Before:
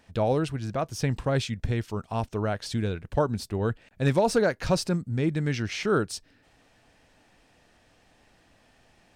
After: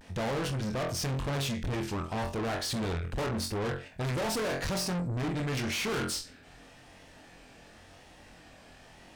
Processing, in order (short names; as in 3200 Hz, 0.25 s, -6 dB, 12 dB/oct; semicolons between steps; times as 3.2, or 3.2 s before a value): flutter echo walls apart 3.9 m, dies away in 0.27 s; tube stage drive 37 dB, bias 0.35; vibrato 0.9 Hz 77 cents; gain +7 dB